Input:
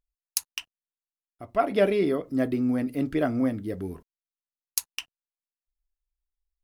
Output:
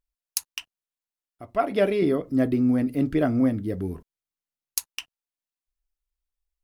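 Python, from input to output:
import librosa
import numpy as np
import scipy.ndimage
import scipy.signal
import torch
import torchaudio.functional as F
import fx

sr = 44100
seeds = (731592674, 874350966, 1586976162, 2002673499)

y = fx.low_shelf(x, sr, hz=310.0, db=6.5, at=(2.02, 4.79))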